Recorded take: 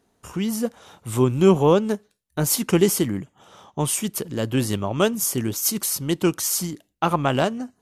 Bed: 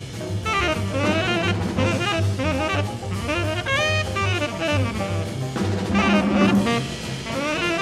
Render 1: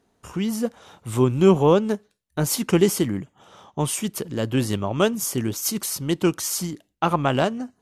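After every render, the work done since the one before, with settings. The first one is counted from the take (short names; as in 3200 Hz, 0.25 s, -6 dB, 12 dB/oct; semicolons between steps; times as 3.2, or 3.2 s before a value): high shelf 8600 Hz -6.5 dB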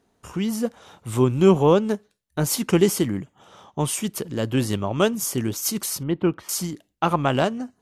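6.03–6.49 air absorption 490 m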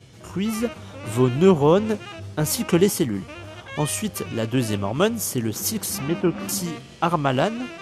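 add bed -15 dB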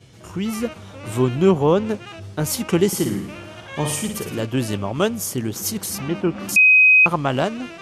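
1.35–2.07 high shelf 5000 Hz -4 dB; 2.87–4.43 flutter echo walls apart 9.5 m, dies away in 0.61 s; 6.56–7.06 bleep 2520 Hz -8.5 dBFS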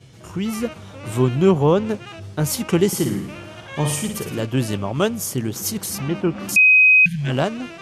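7.07–7.29 spectral repair 220–1500 Hz both; bell 140 Hz +5 dB 0.31 oct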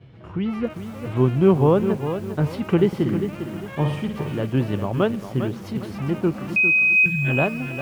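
air absorption 410 m; lo-fi delay 0.402 s, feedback 35%, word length 7-bit, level -9 dB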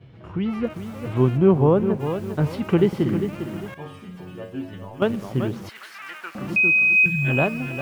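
1.36–1.99 high shelf 3000 Hz -> 2300 Hz -11 dB; 3.74–5.02 metallic resonator 90 Hz, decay 0.37 s, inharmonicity 0.002; 5.69–6.35 resonant high-pass 1600 Hz, resonance Q 2.3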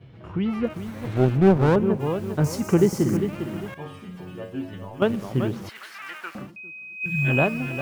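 0.87–1.76 minimum comb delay 0.51 ms; 2.44–3.17 resonant high shelf 4600 Hz +11 dB, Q 3; 6.33–7.19 dip -22.5 dB, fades 0.19 s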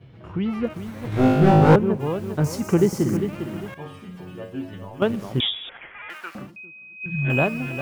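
1.1–1.76 flutter echo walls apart 3.3 m, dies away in 1.2 s; 5.4–6.1 inverted band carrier 3600 Hz; 6.65–7.3 air absorption 300 m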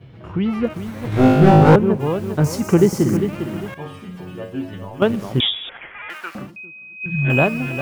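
gain +4.5 dB; limiter -1 dBFS, peak gain reduction 2 dB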